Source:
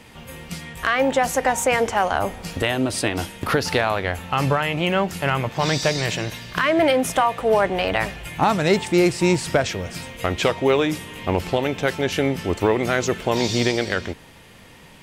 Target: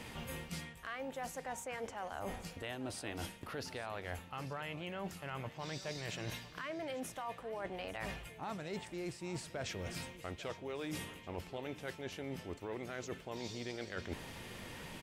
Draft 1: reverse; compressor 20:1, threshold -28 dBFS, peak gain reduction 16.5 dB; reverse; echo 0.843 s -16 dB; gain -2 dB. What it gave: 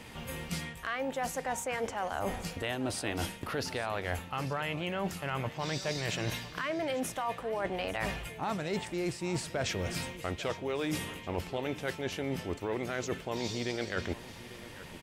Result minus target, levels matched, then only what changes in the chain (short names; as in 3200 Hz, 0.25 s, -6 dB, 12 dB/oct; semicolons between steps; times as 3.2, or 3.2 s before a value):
compressor: peak gain reduction -8.5 dB
change: compressor 20:1, threshold -37 dBFS, peak gain reduction 25 dB